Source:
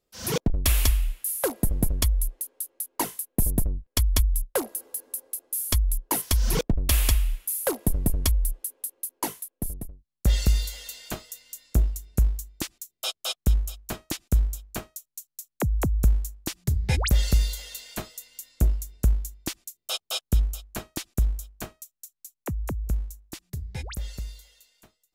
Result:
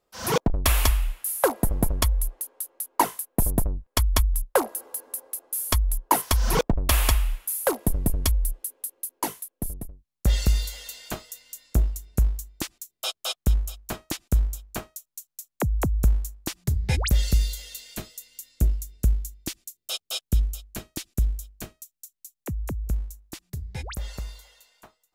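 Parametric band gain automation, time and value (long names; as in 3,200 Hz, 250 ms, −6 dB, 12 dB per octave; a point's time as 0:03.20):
parametric band 970 Hz 1.8 octaves
0:07.30 +10.5 dB
0:07.98 +2.5 dB
0:16.68 +2.5 dB
0:17.39 −6.5 dB
0:22.39 −6.5 dB
0:23.04 +1 dB
0:23.74 +1 dB
0:24.17 +12.5 dB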